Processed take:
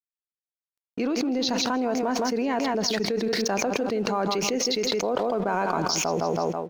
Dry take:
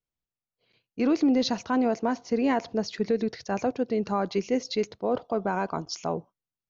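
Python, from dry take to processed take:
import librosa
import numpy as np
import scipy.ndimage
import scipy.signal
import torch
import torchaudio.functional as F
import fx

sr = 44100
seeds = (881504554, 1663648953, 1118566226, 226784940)

p1 = fx.peak_eq(x, sr, hz=72.0, db=-14.0, octaves=2.1)
p2 = fx.notch(p1, sr, hz=2000.0, q=25.0)
p3 = np.sign(p2) * np.maximum(np.abs(p2) - 10.0 ** (-56.5 / 20.0), 0.0)
p4 = p3 + fx.echo_feedback(p3, sr, ms=162, feedback_pct=23, wet_db=-12, dry=0)
p5 = fx.env_flatten(p4, sr, amount_pct=100)
y = p5 * librosa.db_to_amplitude(-3.0)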